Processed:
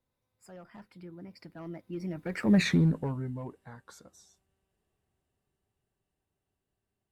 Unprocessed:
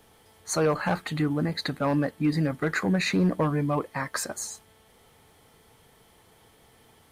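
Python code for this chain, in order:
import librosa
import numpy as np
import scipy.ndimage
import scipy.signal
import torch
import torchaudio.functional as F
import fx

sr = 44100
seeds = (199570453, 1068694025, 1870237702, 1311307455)

y = fx.doppler_pass(x, sr, speed_mps=48, closest_m=5.4, pass_at_s=2.61)
y = fx.low_shelf(y, sr, hz=340.0, db=10.0)
y = F.gain(torch.from_numpy(y), -2.5).numpy()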